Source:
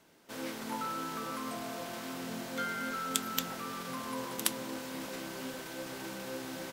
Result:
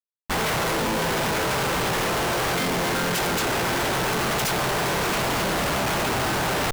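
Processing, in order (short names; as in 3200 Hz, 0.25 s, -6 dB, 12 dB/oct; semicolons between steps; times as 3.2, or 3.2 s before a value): spectral gate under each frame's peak -10 dB weak; sample leveller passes 5; Schmitt trigger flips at -37 dBFS; gain +5 dB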